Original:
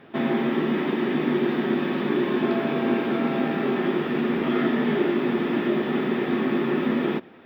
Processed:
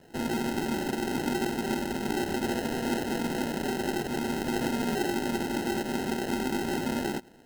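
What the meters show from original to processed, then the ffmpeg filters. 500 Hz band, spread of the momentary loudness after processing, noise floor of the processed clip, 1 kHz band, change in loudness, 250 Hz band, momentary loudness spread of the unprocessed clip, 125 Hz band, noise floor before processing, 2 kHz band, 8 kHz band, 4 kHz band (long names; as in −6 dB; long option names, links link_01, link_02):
−7.5 dB, 2 LU, −51 dBFS, −2.5 dB, −6.0 dB, −7.0 dB, 2 LU, −4.5 dB, −45 dBFS, −4.5 dB, can't be measured, −0.5 dB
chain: -af "acrusher=samples=38:mix=1:aa=0.000001,volume=-6.5dB"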